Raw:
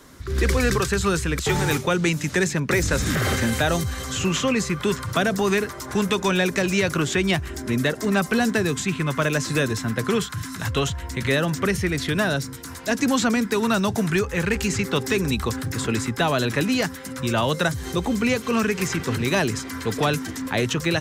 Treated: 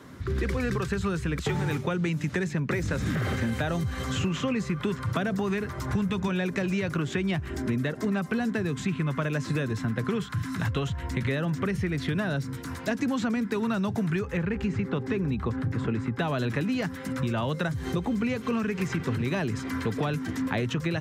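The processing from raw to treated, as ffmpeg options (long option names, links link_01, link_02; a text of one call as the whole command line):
ffmpeg -i in.wav -filter_complex "[0:a]asettb=1/sr,asplit=3[link_01][link_02][link_03];[link_01]atrim=end=5.294[link_04];[link_02]atrim=start=5.29:end=6.28,asetpts=PTS-STARTPTS,afade=type=in:duration=0.004:curve=qsin,afade=type=out:start_time=0.986:duration=0.004:curve=qsin,asubboost=boost=12:cutoff=160[link_05];[link_03]atrim=start=6.276[link_06];[link_04][link_05]acrossfade=duration=0.004:curve1=hsin:curve2=qsin[link_07];[link_07][link_06]acrossfade=duration=0.004:curve1=qsin:curve2=hsin,asettb=1/sr,asplit=3[link_08][link_09][link_10];[link_08]atrim=end=14.374[link_11];[link_09]atrim=start=14.37:end=16.19,asetpts=PTS-STARTPTS,afade=type=in:duration=0.004:curve=qsin,afade=type=out:start_time=1.816:duration=0.004:curve=qsin,lowpass=frequency=1700:poles=1[link_12];[link_10]atrim=start=16.186[link_13];[link_11][link_12]acrossfade=duration=0.004:curve1=hsin:curve2=qsin[link_14];[link_14][link_13]acrossfade=duration=0.004:curve1=qsin:curve2=hsin,highpass=98,bass=frequency=250:gain=7,treble=frequency=4000:gain=-10,acompressor=threshold=-25dB:ratio=6" out.wav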